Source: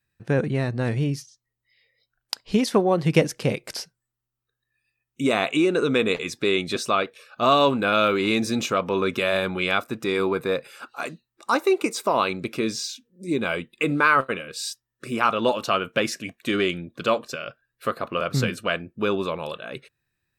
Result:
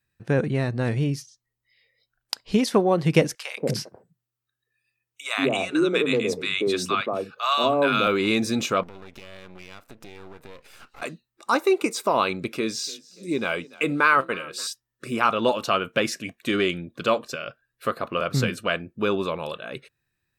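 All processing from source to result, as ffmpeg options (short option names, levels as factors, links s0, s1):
-filter_complex "[0:a]asettb=1/sr,asplit=3[s0][s1][s2];[s0]atrim=end=3.354[s3];[s1]atrim=start=3.35:end=8.07,asetpts=PTS-STARTPTS,afade=t=in:d=0.004:c=qsin,afade=t=out:st=4.716:d=0.004:c=qsin,highpass=91,acrossover=split=200|890[s4][s5][s6];[s5]adelay=180[s7];[s4]adelay=240[s8];[s8][s7][s6]amix=inputs=3:normalize=0,atrim=end_sample=208152[s9];[s2]atrim=start=8.066[s10];[s3][s9]acrossfade=d=0.004:c1=hsin:c2=qsin[s11];[s11][s10]acrossfade=d=0.004:c1=qsin:c2=hsin,asettb=1/sr,asplit=3[s12][s13][s14];[s12]atrim=end=8.834[s15];[s13]atrim=start=8.83:end=11.02,asetpts=PTS-STARTPTS,afade=t=in:d=0.004:c=qsin,afade=t=out:st=2.186:d=0.004:c=qsin,aeval=exprs='max(val(0),0)':c=same,acompressor=threshold=0.00891:ratio=4:attack=3.2:release=140:knee=1:detection=peak[s16];[s14]atrim=start=11.016[s17];[s15][s16]acrossfade=d=0.004:c1=hsin:c2=qsin[s18];[s18][s17]acrossfade=d=0.004:c1=qsin:c2=hsin,asettb=1/sr,asplit=3[s19][s20][s21];[s19]atrim=end=12.524[s22];[s20]atrim=start=12.52:end=14.67,asetpts=PTS-STARTPTS,afade=t=in:d=0.004:c=qsin,afade=t=out:st=2.146:d=0.004:c=qsin,lowshelf=f=160:g=-7.5,asplit=4[s23][s24][s25][s26];[s24]adelay=290,afreqshift=34,volume=0.0841[s27];[s25]adelay=580,afreqshift=68,volume=0.0389[s28];[s26]adelay=870,afreqshift=102,volume=0.0178[s29];[s23][s27][s28][s29]amix=inputs=4:normalize=0,atrim=end_sample=94815[s30];[s21]atrim=start=14.666[s31];[s22][s30]acrossfade=d=0.004:c1=hsin:c2=qsin[s32];[s32][s31]acrossfade=d=0.004:c1=qsin:c2=hsin"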